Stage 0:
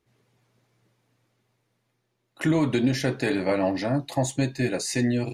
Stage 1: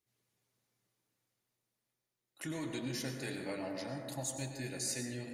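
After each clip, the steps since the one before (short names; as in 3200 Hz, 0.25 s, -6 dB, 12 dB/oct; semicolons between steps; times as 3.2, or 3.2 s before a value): pre-emphasis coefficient 0.8; plate-style reverb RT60 1.9 s, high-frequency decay 0.25×, pre-delay 85 ms, DRR 3.5 dB; gain -5 dB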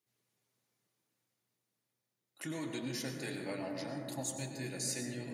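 HPF 110 Hz; on a send: repeats that get brighter 0.676 s, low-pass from 200 Hz, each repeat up 1 oct, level -6 dB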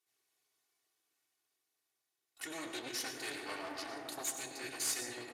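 minimum comb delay 2.7 ms; downsampling 32000 Hz; HPF 810 Hz 6 dB/oct; gain +4 dB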